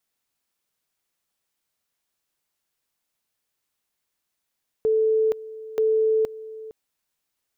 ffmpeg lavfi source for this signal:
ffmpeg -f lavfi -i "aevalsrc='pow(10,(-17-17.5*gte(mod(t,0.93),0.47))/20)*sin(2*PI*439*t)':duration=1.86:sample_rate=44100" out.wav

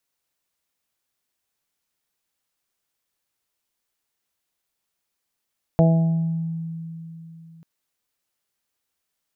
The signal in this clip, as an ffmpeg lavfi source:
ffmpeg -f lavfi -i "aevalsrc='0.237*pow(10,-3*t/3.43)*sin(2*PI*164*t)+0.0668*pow(10,-3*t/0.91)*sin(2*PI*328*t)+0.0944*pow(10,-3*t/0.61)*sin(2*PI*492*t)+0.141*pow(10,-3*t/0.81)*sin(2*PI*656*t)+0.0335*pow(10,-3*t/1.1)*sin(2*PI*820*t)':duration=1.84:sample_rate=44100" out.wav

